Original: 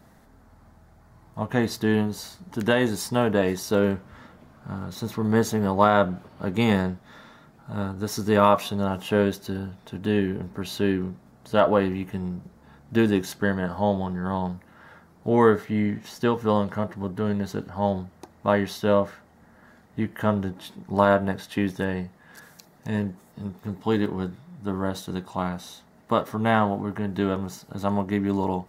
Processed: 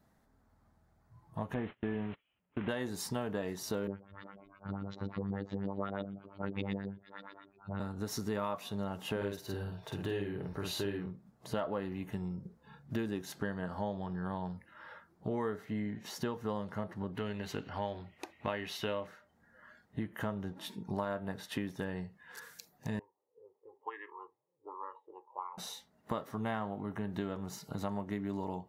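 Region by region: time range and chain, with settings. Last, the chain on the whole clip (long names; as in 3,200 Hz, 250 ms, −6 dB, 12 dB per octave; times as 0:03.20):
0:01.54–0:02.69: linear delta modulator 16 kbit/s, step −30.5 dBFS + noise gate −33 dBFS, range −31 dB
0:03.87–0:07.80: dynamic equaliser 1,100 Hz, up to −6 dB, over −32 dBFS, Q 0.9 + auto-filter low-pass saw up 8.4 Hz 270–4,200 Hz + phases set to zero 98.6 Hz
0:09.16–0:11.06: parametric band 220 Hz −15 dB 0.28 octaves + double-tracking delay 50 ms −2 dB
0:17.15–0:19.07: high-pass filter 55 Hz 6 dB per octave + parametric band 2,600 Hz +13 dB 0.82 octaves + notch filter 190 Hz, Q 5.9
0:22.99–0:25.58: low-pass filter 3,000 Hz + envelope filter 410–1,700 Hz, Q 4.3, up, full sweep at −19 dBFS + phaser with its sweep stopped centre 1,000 Hz, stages 8
whole clip: noise reduction from a noise print of the clip's start 14 dB; downward compressor 4 to 1, threshold −34 dBFS; level −1.5 dB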